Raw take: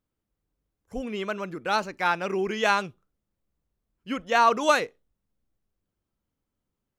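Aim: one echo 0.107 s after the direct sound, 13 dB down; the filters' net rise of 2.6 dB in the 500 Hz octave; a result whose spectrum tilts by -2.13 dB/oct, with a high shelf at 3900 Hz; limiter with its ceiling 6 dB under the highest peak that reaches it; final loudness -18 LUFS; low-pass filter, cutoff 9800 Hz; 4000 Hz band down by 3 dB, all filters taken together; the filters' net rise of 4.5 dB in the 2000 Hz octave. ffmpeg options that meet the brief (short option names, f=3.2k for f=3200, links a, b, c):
-af "lowpass=9.8k,equalizer=f=500:t=o:g=3,equalizer=f=2k:t=o:g=8.5,highshelf=f=3.9k:g=-6.5,equalizer=f=4k:t=o:g=-4,alimiter=limit=-11dB:level=0:latency=1,aecho=1:1:107:0.224,volume=7dB"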